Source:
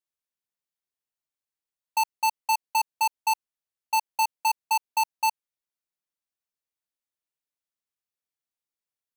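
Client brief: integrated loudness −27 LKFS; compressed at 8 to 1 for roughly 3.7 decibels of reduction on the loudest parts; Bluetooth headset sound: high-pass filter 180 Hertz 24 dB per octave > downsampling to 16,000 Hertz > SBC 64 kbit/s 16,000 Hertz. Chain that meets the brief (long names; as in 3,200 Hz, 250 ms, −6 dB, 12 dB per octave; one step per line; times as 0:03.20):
downward compressor 8 to 1, threshold −25 dBFS
high-pass filter 180 Hz 24 dB per octave
downsampling to 16,000 Hz
level +3.5 dB
SBC 64 kbit/s 16,000 Hz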